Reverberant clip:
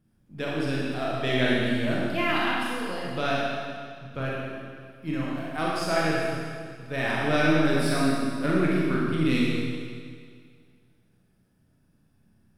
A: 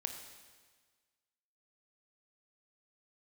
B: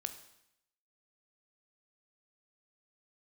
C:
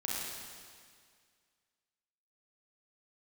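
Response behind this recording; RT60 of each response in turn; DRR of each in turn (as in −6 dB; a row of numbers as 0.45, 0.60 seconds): C; 1.5, 0.80, 2.0 seconds; 4.5, 8.0, −5.5 decibels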